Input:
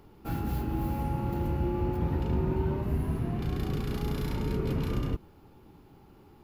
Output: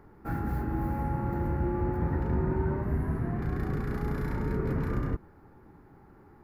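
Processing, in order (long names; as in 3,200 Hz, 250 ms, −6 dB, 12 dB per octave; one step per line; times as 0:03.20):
high shelf with overshoot 2,300 Hz −8.5 dB, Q 3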